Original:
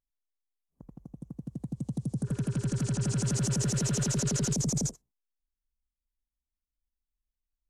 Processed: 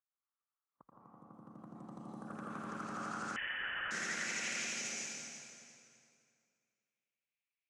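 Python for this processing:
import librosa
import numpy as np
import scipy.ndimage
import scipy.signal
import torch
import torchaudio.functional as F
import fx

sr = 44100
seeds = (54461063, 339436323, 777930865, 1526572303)

y = fx.filter_sweep_bandpass(x, sr, from_hz=1200.0, to_hz=2400.0, start_s=2.94, end_s=4.42, q=7.0)
y = fx.hpss(y, sr, part='harmonic', gain_db=-13)
y = fx.echo_feedback(y, sr, ms=345, feedback_pct=27, wet_db=-10.5)
y = fx.rev_plate(y, sr, seeds[0], rt60_s=2.3, hf_ratio=0.8, predelay_ms=105, drr_db=-5.5)
y = fx.freq_invert(y, sr, carrier_hz=3200, at=(3.36, 3.91))
y = y * 10.0 ** (13.0 / 20.0)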